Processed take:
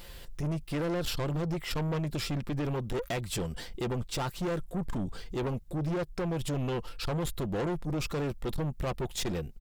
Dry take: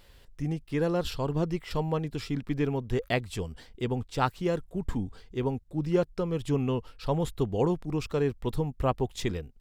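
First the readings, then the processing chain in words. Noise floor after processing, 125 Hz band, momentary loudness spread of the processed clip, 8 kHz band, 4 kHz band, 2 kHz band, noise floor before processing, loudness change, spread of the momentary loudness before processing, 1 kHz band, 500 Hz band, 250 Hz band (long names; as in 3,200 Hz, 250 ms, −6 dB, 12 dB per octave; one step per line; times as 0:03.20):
−47 dBFS, −2.0 dB, 3 LU, +5.5 dB, +2.5 dB, −1.5 dB, −56 dBFS, −3.0 dB, 6 LU, −4.5 dB, −4.5 dB, −3.0 dB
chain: high-shelf EQ 7,600 Hz +6.5 dB
comb filter 5.8 ms, depth 35%
in parallel at −1.5 dB: downward compressor, threshold −36 dBFS, peak gain reduction 17 dB
on the sum: brickwall limiter −17.5 dBFS, peak gain reduction 8 dB
soft clipping −31.5 dBFS, distortion −7 dB
level +3 dB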